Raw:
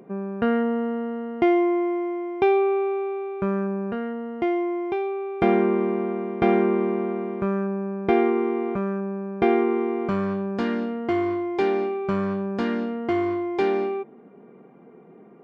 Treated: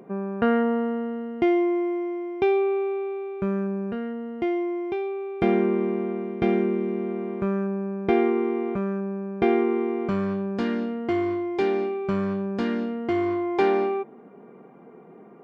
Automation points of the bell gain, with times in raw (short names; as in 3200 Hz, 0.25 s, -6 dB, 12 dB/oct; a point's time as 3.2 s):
bell 1000 Hz 1.8 oct
0.73 s +2.5 dB
1.33 s -6 dB
6.18 s -6 dB
6.84 s -13.5 dB
7.34 s -3.5 dB
13.12 s -3.5 dB
13.53 s +4 dB